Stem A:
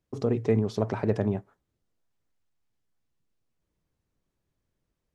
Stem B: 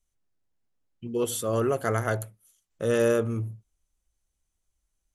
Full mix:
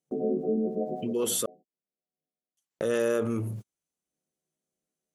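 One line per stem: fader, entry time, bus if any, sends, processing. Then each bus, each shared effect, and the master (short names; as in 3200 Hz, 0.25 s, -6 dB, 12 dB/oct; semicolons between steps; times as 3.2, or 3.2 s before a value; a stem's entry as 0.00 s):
-4.0 dB, 0.00 s, no send, frequency quantiser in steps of 3 st; FFT band-pass 150–860 Hz; auto duck -20 dB, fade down 0.30 s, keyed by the second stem
-5.5 dB, 0.00 s, muted 1.46–2.57, no send, HPF 200 Hz 12 dB/oct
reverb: off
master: gate -57 dBFS, range -41 dB; fast leveller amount 70%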